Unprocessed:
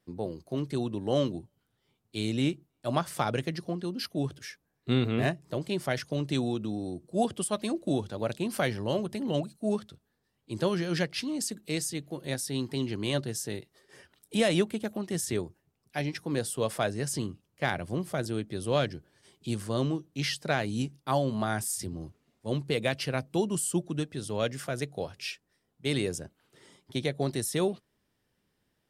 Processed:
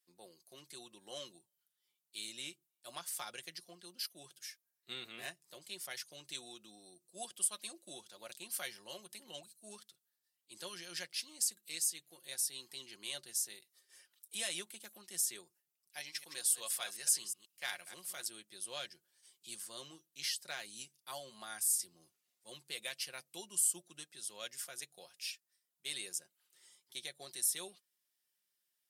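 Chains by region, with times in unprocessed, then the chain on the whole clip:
16–18.28 reverse delay 0.121 s, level -10.5 dB + tilt shelf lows -4 dB, about 690 Hz
whole clip: differentiator; comb 5.6 ms, depth 46%; gain -1 dB

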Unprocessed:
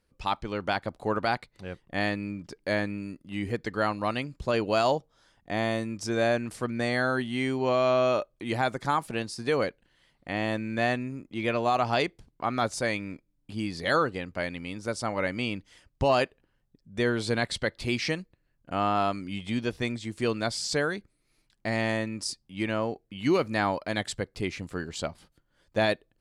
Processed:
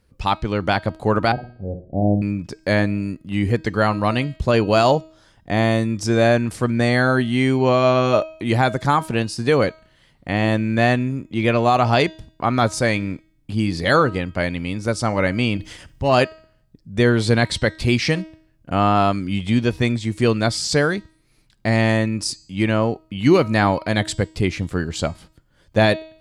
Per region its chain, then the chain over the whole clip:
1.32–2.22 steep low-pass 740 Hz 48 dB/oct + notches 60/120/180/240/300/360/420 Hz + flutter echo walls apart 10 m, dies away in 0.35 s
15.57–16.14 transient shaper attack -12 dB, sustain +11 dB + flutter echo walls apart 11.6 m, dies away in 0.2 s
whole clip: bell 83 Hz +7.5 dB 2.7 oct; de-hum 317.4 Hz, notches 26; gain +8 dB

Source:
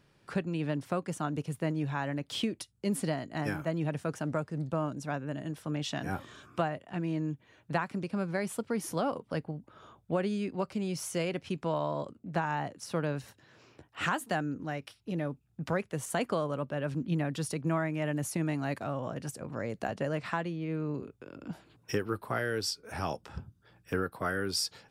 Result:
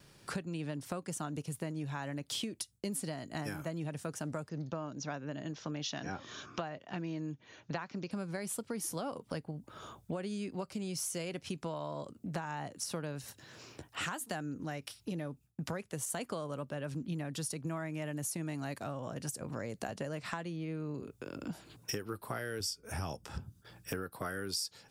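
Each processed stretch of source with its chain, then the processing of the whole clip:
4.49–8.11 steep low-pass 6700 Hz 96 dB/oct + low shelf 92 Hz -11.5 dB
22.6–23.26 low shelf 120 Hz +12 dB + notch 4100 Hz, Q 5.2
whole clip: gate with hold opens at -56 dBFS; tone controls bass +1 dB, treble +10 dB; compressor 4:1, threshold -42 dBFS; gain +4.5 dB

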